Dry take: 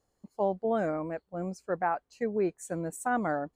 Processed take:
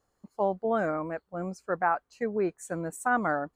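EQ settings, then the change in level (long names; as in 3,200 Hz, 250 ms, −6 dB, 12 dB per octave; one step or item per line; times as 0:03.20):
parametric band 1,300 Hz +7 dB 0.95 octaves
0.0 dB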